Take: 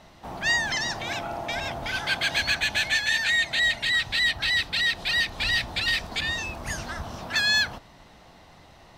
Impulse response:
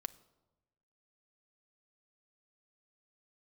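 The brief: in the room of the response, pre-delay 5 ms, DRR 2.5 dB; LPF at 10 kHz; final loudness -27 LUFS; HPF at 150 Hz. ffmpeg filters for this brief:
-filter_complex "[0:a]highpass=150,lowpass=10000,asplit=2[s0][s1];[1:a]atrim=start_sample=2205,adelay=5[s2];[s1][s2]afir=irnorm=-1:irlink=0,volume=1[s3];[s0][s3]amix=inputs=2:normalize=0,volume=0.631"

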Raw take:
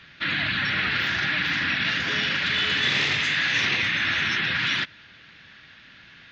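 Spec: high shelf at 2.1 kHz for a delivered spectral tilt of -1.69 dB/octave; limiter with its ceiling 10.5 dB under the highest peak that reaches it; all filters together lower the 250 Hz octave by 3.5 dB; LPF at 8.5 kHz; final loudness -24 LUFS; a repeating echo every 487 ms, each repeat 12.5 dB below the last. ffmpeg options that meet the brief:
-af "lowpass=8500,equalizer=f=250:t=o:g=-5,highshelf=f=2100:g=4,alimiter=limit=0.112:level=0:latency=1,aecho=1:1:487|974|1461:0.237|0.0569|0.0137,volume=1.19"

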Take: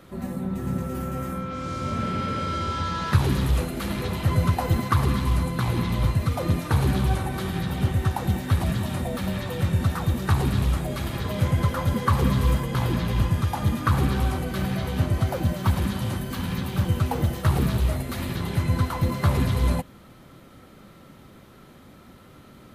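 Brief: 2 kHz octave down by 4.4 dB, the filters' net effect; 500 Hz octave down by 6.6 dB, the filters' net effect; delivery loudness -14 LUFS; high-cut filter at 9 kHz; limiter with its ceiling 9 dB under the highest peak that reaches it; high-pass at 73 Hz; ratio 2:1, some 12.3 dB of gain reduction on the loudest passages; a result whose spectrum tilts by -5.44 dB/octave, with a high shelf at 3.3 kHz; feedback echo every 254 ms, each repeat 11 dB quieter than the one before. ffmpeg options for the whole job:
-af "highpass=73,lowpass=9000,equalizer=f=500:t=o:g=-8.5,equalizer=f=2000:t=o:g=-7.5,highshelf=f=3300:g=7.5,acompressor=threshold=0.01:ratio=2,alimiter=level_in=1.88:limit=0.0631:level=0:latency=1,volume=0.531,aecho=1:1:254|508|762:0.282|0.0789|0.0221,volume=16.8"

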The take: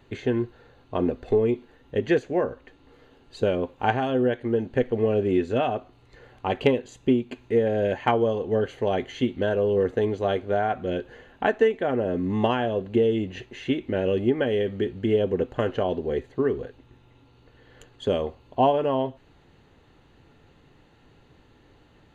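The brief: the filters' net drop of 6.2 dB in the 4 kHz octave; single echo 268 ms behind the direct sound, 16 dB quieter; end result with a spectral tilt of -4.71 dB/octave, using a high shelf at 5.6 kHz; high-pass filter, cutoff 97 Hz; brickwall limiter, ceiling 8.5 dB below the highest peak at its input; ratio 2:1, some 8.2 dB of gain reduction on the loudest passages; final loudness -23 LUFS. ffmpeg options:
-af "highpass=97,equalizer=f=4000:t=o:g=-8.5,highshelf=f=5600:g=-3,acompressor=threshold=0.0282:ratio=2,alimiter=limit=0.0841:level=0:latency=1,aecho=1:1:268:0.158,volume=3.16"

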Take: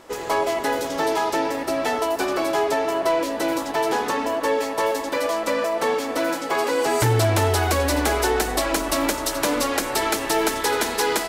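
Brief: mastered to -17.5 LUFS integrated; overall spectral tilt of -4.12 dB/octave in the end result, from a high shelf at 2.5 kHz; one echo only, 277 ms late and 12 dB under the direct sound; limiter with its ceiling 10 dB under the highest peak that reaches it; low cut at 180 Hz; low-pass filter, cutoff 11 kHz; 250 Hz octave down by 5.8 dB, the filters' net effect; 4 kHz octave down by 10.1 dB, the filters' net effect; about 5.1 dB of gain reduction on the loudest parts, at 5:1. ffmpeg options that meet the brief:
-af "highpass=180,lowpass=11000,equalizer=f=250:t=o:g=-7,highshelf=f=2500:g=-8.5,equalizer=f=4000:t=o:g=-5.5,acompressor=threshold=0.0562:ratio=5,alimiter=level_in=1.26:limit=0.0631:level=0:latency=1,volume=0.794,aecho=1:1:277:0.251,volume=6.31"

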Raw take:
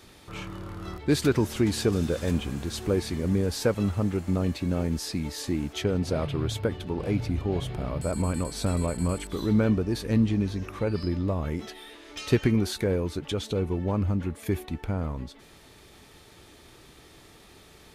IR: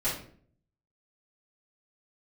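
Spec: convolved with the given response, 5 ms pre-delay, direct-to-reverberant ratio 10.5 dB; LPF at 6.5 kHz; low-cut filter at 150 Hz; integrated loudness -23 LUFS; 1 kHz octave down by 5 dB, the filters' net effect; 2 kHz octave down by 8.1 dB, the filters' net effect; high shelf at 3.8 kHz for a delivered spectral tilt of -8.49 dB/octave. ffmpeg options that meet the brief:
-filter_complex "[0:a]highpass=150,lowpass=6500,equalizer=f=1000:t=o:g=-4,equalizer=f=2000:t=o:g=-7,highshelf=f=3800:g=-9,asplit=2[s0][s1];[1:a]atrim=start_sample=2205,adelay=5[s2];[s1][s2]afir=irnorm=-1:irlink=0,volume=0.119[s3];[s0][s3]amix=inputs=2:normalize=0,volume=2.11"

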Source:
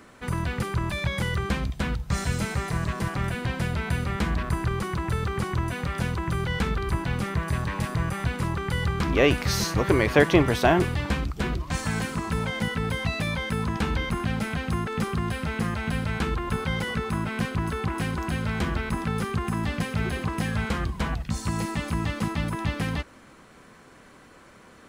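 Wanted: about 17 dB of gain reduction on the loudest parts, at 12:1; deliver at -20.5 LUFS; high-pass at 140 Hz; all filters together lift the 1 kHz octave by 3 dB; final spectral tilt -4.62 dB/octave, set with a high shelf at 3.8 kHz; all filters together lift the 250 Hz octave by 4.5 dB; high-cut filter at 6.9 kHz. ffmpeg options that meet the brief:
-af "highpass=140,lowpass=6900,equalizer=f=250:t=o:g=7,equalizer=f=1000:t=o:g=3,highshelf=f=3800:g=5,acompressor=threshold=0.0447:ratio=12,volume=3.76"

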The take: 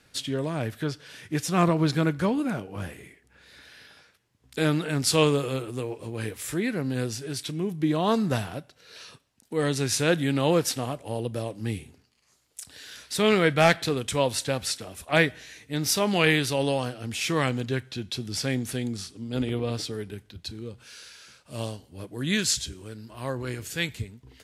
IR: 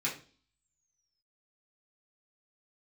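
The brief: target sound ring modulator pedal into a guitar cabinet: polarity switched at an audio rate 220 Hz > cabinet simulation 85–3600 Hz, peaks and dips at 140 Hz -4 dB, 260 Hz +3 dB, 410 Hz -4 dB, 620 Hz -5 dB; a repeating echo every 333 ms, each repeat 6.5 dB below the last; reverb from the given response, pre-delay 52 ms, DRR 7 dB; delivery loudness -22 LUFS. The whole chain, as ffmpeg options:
-filter_complex "[0:a]aecho=1:1:333|666|999|1332|1665|1998:0.473|0.222|0.105|0.0491|0.0231|0.0109,asplit=2[s0][s1];[1:a]atrim=start_sample=2205,adelay=52[s2];[s1][s2]afir=irnorm=-1:irlink=0,volume=0.237[s3];[s0][s3]amix=inputs=2:normalize=0,aeval=exprs='val(0)*sgn(sin(2*PI*220*n/s))':c=same,highpass=85,equalizer=f=140:t=q:w=4:g=-4,equalizer=f=260:t=q:w=4:g=3,equalizer=f=410:t=q:w=4:g=-4,equalizer=f=620:t=q:w=4:g=-5,lowpass=f=3600:w=0.5412,lowpass=f=3600:w=1.3066,volume=1.78"

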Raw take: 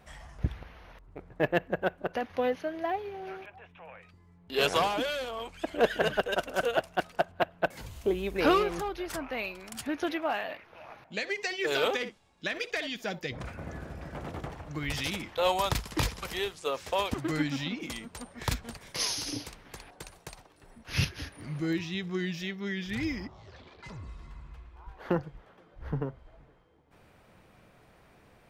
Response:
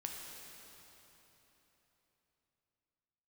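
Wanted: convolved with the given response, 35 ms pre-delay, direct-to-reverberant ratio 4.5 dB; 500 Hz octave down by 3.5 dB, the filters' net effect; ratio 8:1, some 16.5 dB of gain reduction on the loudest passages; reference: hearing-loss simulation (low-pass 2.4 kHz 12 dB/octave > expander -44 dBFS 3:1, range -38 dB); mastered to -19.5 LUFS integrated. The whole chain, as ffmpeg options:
-filter_complex "[0:a]equalizer=f=500:t=o:g=-4.5,acompressor=threshold=0.0112:ratio=8,asplit=2[s0][s1];[1:a]atrim=start_sample=2205,adelay=35[s2];[s1][s2]afir=irnorm=-1:irlink=0,volume=0.668[s3];[s0][s3]amix=inputs=2:normalize=0,lowpass=2400,agate=range=0.0126:threshold=0.00631:ratio=3,volume=16.8"

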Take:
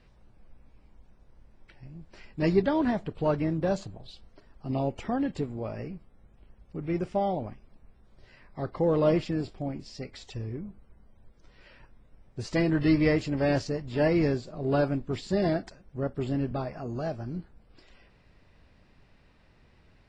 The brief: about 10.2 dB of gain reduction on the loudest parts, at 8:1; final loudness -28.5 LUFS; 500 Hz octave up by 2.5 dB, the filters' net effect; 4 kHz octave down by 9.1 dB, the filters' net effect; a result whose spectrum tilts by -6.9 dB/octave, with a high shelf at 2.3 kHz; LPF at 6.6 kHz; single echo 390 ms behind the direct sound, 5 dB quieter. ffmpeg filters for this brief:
-af "lowpass=6600,equalizer=f=500:t=o:g=3.5,highshelf=f=2300:g=-4,equalizer=f=4000:t=o:g=-7.5,acompressor=threshold=0.0447:ratio=8,aecho=1:1:390:0.562,volume=1.68"

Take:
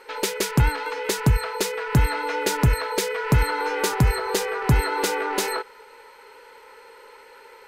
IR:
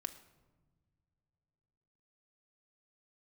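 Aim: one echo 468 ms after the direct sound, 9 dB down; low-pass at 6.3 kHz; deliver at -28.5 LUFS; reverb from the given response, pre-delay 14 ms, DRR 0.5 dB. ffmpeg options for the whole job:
-filter_complex "[0:a]lowpass=6300,aecho=1:1:468:0.355,asplit=2[s0][s1];[1:a]atrim=start_sample=2205,adelay=14[s2];[s1][s2]afir=irnorm=-1:irlink=0,volume=1.19[s3];[s0][s3]amix=inputs=2:normalize=0,volume=0.376"

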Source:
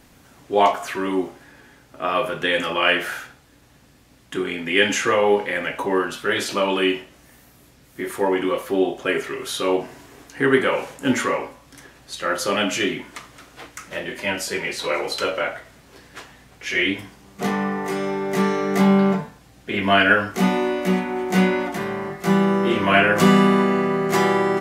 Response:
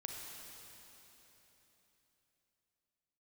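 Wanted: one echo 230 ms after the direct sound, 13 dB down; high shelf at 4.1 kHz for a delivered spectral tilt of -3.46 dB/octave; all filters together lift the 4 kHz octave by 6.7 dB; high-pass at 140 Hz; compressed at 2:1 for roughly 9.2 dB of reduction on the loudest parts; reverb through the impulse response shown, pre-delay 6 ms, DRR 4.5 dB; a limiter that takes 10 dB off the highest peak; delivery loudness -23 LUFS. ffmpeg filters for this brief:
-filter_complex "[0:a]highpass=140,equalizer=f=4000:t=o:g=6.5,highshelf=f=4100:g=6,acompressor=threshold=0.0447:ratio=2,alimiter=limit=0.119:level=0:latency=1,aecho=1:1:230:0.224,asplit=2[s0][s1];[1:a]atrim=start_sample=2205,adelay=6[s2];[s1][s2]afir=irnorm=-1:irlink=0,volume=0.708[s3];[s0][s3]amix=inputs=2:normalize=0,volume=1.68"

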